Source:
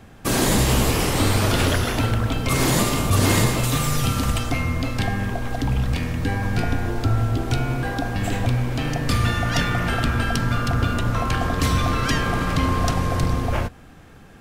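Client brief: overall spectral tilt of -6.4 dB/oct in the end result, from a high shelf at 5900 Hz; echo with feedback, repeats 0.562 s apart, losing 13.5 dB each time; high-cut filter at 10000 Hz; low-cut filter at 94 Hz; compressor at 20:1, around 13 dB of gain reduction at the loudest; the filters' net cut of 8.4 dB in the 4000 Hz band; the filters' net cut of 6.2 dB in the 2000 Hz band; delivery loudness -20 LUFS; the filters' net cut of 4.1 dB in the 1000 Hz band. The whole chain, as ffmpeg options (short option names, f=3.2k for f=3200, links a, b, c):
-af "highpass=94,lowpass=10k,equalizer=f=1k:t=o:g=-3.5,equalizer=f=2k:t=o:g=-4.5,equalizer=f=4k:t=o:g=-6.5,highshelf=f=5.9k:g=-7.5,acompressor=threshold=-29dB:ratio=20,aecho=1:1:562|1124:0.211|0.0444,volume=14dB"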